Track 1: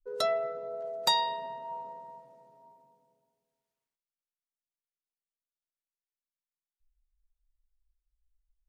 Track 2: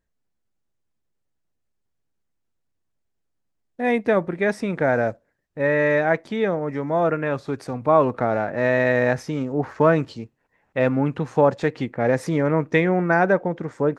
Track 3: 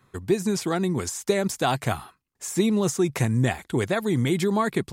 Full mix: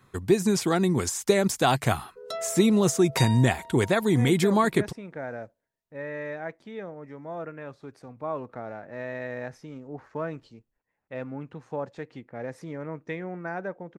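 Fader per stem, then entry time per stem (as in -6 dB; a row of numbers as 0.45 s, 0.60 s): -5.5 dB, -15.5 dB, +1.5 dB; 2.10 s, 0.35 s, 0.00 s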